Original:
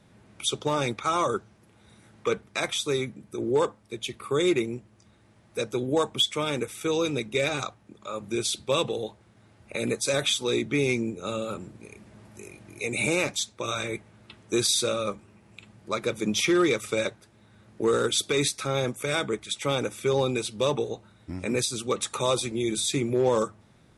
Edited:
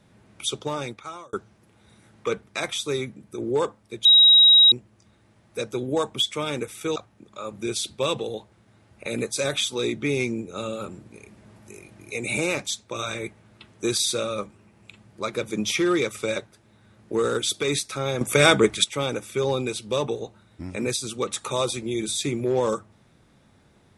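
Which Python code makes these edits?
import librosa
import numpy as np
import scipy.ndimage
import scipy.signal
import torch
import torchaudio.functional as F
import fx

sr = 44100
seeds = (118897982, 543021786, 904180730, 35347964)

y = fx.edit(x, sr, fx.fade_out_span(start_s=0.49, length_s=0.84),
    fx.bleep(start_s=4.05, length_s=0.67, hz=3820.0, db=-10.0),
    fx.cut(start_s=6.96, length_s=0.69),
    fx.clip_gain(start_s=18.9, length_s=0.63, db=11.0), tone=tone)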